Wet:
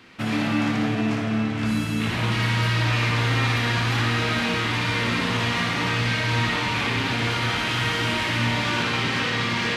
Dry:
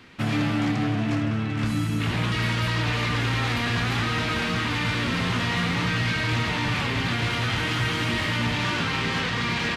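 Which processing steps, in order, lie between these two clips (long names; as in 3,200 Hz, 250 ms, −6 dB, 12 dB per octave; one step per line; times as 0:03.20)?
low-shelf EQ 110 Hz −8.5 dB
flutter between parallel walls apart 10.2 metres, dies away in 0.56 s
convolution reverb RT60 3.0 s, pre-delay 6 ms, DRR 4.5 dB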